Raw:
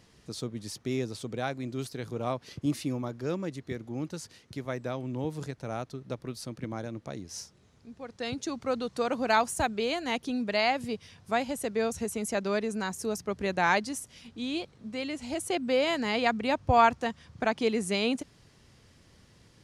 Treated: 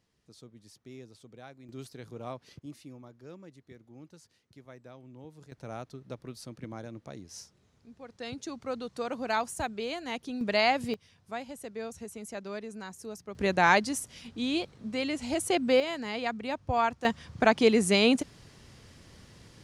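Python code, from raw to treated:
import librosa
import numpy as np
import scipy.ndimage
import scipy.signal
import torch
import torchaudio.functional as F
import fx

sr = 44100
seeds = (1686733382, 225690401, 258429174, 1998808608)

y = fx.gain(x, sr, db=fx.steps((0.0, -16.0), (1.69, -8.0), (2.59, -15.5), (5.52, -5.0), (10.41, 1.5), (10.94, -9.5), (13.35, 3.0), (15.8, -6.0), (17.05, 5.5)))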